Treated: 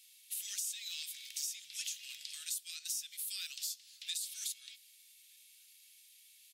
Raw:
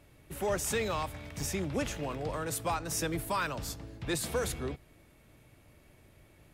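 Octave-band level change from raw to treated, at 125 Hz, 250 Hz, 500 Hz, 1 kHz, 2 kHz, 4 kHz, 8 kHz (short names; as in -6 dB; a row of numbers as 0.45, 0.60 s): under -40 dB, under -40 dB, under -40 dB, under -35 dB, -12.5 dB, +1.5 dB, -0.5 dB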